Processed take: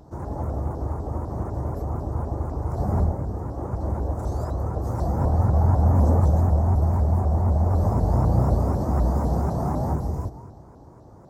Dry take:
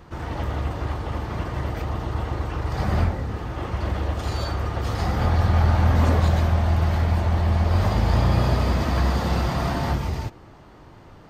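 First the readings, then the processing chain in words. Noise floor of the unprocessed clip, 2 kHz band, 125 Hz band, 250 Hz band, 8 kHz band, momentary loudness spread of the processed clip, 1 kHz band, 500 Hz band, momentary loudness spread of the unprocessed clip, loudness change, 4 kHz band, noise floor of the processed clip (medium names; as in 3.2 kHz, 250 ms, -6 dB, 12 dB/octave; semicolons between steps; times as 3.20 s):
-47 dBFS, under -15 dB, 0.0 dB, 0.0 dB, no reading, 11 LU, -2.0 dB, 0.0 dB, 10 LU, -0.5 dB, under -20 dB, -46 dBFS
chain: FFT filter 840 Hz 0 dB, 2.8 kHz -27 dB, 6.1 kHz -3 dB; plate-style reverb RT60 1.6 s, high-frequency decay 0.6×, pre-delay 110 ms, DRR 14.5 dB; dynamic bell 4 kHz, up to -8 dB, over -55 dBFS, Q 0.86; high-pass 48 Hz; vibrato with a chosen wave saw up 4 Hz, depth 250 cents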